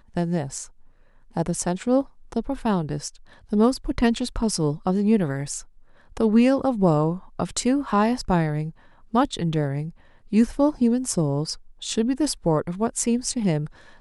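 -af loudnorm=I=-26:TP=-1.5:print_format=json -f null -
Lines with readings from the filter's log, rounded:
"input_i" : "-23.8",
"input_tp" : "-5.4",
"input_lra" : "3.1",
"input_thresh" : "-34.3",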